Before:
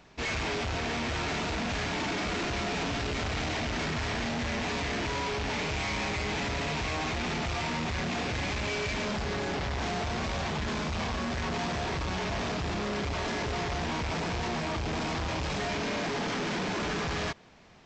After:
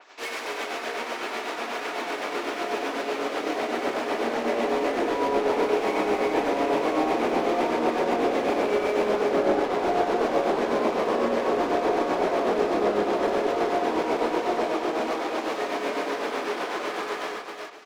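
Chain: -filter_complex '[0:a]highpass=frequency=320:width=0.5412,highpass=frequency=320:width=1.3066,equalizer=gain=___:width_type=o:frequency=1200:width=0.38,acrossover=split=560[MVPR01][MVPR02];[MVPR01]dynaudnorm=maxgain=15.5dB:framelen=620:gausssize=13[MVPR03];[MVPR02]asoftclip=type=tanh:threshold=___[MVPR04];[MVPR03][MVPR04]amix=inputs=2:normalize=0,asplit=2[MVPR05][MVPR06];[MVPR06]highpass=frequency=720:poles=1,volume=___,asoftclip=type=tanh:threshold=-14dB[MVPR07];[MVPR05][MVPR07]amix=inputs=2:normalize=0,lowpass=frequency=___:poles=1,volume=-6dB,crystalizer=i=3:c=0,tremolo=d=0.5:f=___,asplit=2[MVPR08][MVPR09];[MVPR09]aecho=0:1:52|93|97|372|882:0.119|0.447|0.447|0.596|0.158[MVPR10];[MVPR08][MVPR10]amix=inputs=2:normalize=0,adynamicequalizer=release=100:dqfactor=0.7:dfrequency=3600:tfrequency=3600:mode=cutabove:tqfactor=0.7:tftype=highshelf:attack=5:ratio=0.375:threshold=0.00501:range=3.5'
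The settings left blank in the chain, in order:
3, -39dB, 15dB, 1700, 8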